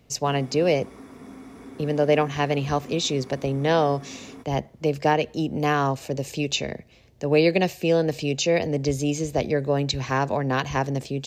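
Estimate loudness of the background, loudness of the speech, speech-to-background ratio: -43.5 LUFS, -24.0 LUFS, 19.5 dB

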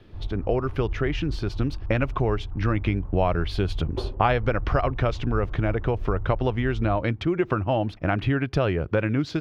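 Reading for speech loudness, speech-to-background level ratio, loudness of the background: -26.0 LUFS, 9.5 dB, -35.5 LUFS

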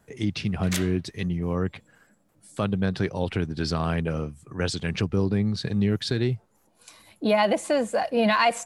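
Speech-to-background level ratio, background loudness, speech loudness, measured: 7.0 dB, -33.0 LUFS, -26.0 LUFS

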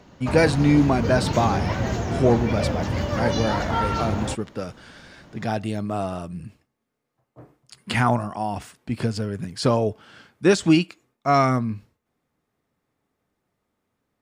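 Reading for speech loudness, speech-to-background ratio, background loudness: -23.5 LUFS, 2.5 dB, -26.0 LUFS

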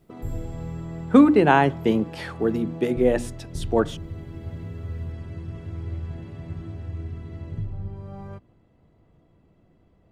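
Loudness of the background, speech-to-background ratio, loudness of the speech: -36.0 LUFS, 15.0 dB, -21.0 LUFS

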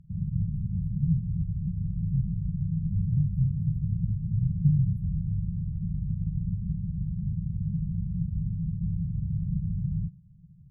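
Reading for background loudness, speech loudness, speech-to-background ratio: -31.0 LUFS, -31.5 LUFS, -0.5 dB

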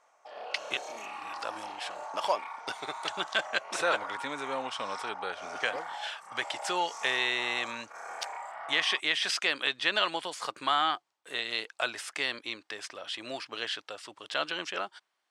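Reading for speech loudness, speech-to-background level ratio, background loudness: -32.0 LUFS, 9.5 dB, -41.5 LUFS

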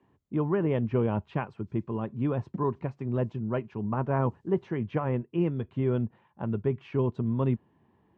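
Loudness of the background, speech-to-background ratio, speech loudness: -45.5 LUFS, 15.5 dB, -30.0 LUFS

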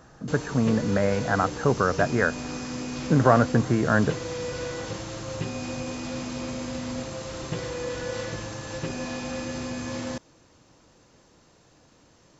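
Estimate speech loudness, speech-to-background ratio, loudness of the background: -23.5 LUFS, 9.5 dB, -33.0 LUFS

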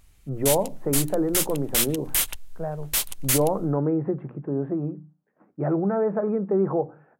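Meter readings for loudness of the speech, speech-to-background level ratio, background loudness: -26.5 LUFS, -1.0 dB, -25.5 LUFS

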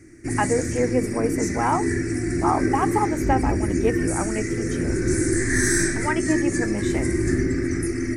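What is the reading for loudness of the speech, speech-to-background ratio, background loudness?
-26.5 LUFS, -2.5 dB, -24.0 LUFS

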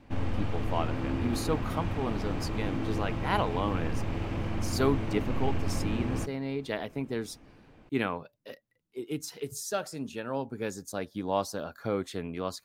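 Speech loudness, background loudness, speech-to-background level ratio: -34.0 LUFS, -34.0 LUFS, 0.0 dB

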